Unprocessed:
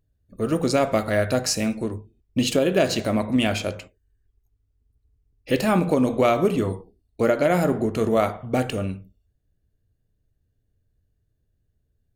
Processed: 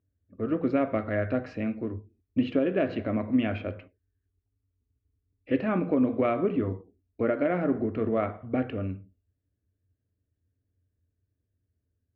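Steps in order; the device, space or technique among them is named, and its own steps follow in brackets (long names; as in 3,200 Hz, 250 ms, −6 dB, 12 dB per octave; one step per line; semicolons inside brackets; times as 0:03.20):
bass cabinet (loudspeaker in its box 81–2,400 Hz, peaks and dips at 89 Hz +9 dB, 150 Hz −7 dB, 280 Hz +7 dB, 870 Hz −7 dB)
level −6.5 dB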